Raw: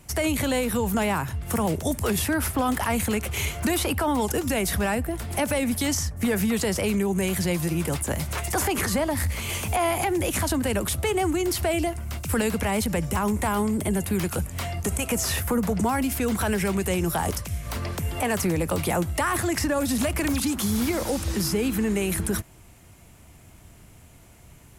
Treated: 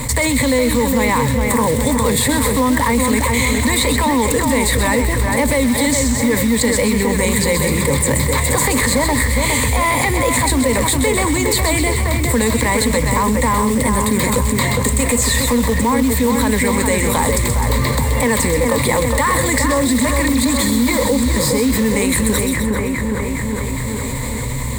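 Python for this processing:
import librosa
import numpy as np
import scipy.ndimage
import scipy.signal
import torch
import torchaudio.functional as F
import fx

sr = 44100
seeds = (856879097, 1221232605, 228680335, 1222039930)

p1 = np.minimum(x, 2.0 * 10.0 ** (-19.0 / 20.0) - x)
p2 = fx.ripple_eq(p1, sr, per_octave=1.0, db=16)
p3 = fx.rider(p2, sr, range_db=10, speed_s=0.5)
p4 = p2 + (p3 * librosa.db_to_amplitude(-2.0))
p5 = fx.quant_float(p4, sr, bits=2)
p6 = p5 + fx.echo_split(p5, sr, split_hz=2400.0, low_ms=411, high_ms=128, feedback_pct=52, wet_db=-6.0, dry=0)
p7 = fx.env_flatten(p6, sr, amount_pct=70)
y = p7 * librosa.db_to_amplitude(-3.0)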